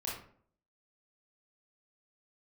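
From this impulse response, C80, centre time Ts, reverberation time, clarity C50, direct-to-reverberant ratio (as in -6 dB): 8.0 dB, 44 ms, 0.55 s, 2.5 dB, -6.0 dB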